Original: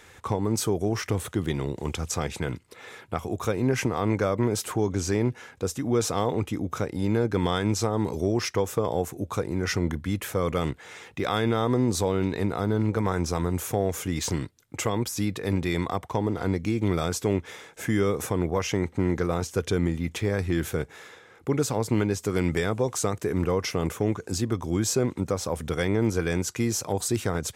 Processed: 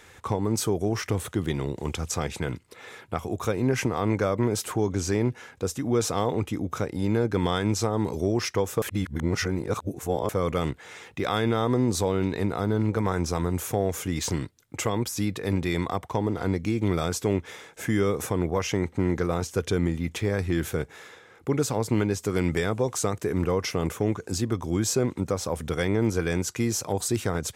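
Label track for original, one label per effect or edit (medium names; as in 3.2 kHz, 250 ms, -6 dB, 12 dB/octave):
8.820000	10.290000	reverse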